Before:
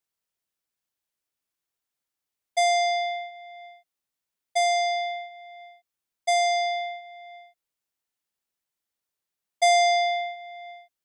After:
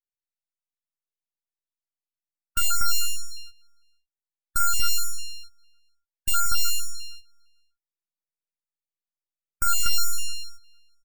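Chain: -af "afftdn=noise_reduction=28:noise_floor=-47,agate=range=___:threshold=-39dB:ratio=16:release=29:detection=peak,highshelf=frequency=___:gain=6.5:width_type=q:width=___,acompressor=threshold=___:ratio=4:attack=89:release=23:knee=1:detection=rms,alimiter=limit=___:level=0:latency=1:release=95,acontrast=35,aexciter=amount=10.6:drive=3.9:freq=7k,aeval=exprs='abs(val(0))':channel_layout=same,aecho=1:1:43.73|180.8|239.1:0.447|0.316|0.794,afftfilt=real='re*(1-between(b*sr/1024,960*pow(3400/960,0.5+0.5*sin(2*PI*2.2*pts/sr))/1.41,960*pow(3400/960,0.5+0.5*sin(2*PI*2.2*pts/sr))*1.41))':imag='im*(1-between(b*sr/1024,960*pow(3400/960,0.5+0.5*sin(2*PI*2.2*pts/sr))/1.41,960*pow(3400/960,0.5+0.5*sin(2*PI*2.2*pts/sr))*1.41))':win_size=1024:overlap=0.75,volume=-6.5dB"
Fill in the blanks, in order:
-15dB, 3k, 1.5, -24dB, -14.5dB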